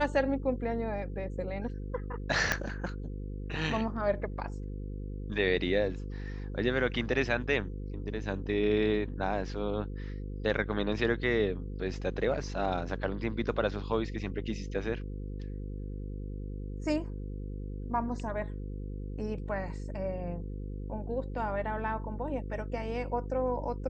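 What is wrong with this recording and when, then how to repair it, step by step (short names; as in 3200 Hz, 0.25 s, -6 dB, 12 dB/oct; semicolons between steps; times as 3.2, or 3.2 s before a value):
buzz 50 Hz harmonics 10 -38 dBFS
2.52 pop -11 dBFS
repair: de-click; de-hum 50 Hz, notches 10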